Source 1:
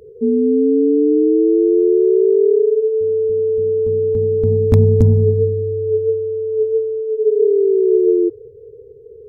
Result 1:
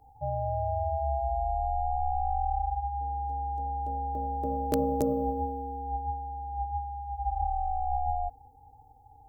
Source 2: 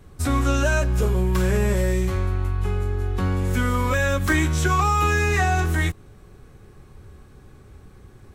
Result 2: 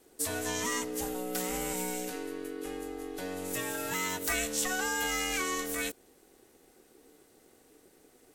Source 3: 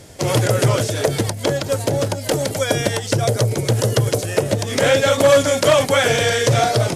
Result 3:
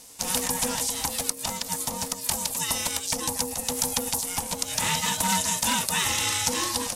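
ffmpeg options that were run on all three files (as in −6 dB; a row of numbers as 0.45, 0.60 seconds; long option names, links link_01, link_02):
-af "aeval=exprs='val(0)*sin(2*PI*370*n/s)':channel_layout=same,crystalizer=i=8:c=0,volume=-14.5dB"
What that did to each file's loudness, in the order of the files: −16.5, −11.0, −7.5 LU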